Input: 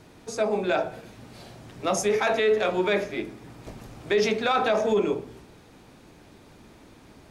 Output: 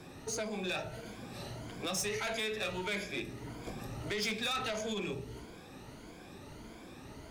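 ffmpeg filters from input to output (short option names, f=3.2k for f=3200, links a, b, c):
-filter_complex "[0:a]afftfilt=real='re*pow(10,10/40*sin(2*PI*(1.8*log(max(b,1)*sr/1024/100)/log(2)-(1.6)*(pts-256)/sr)))':imag='im*pow(10,10/40*sin(2*PI*(1.8*log(max(b,1)*sr/1024/100)/log(2)-(1.6)*(pts-256)/sr)))':win_size=1024:overlap=0.75,acrossover=split=150|2000[a][b][c];[b]acompressor=threshold=-37dB:ratio=6[d];[a][d][c]amix=inputs=3:normalize=0,asoftclip=type=tanh:threshold=-29.5dB"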